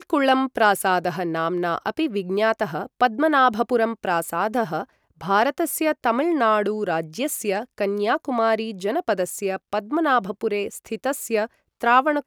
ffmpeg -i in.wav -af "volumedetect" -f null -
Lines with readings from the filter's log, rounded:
mean_volume: -22.3 dB
max_volume: -4.4 dB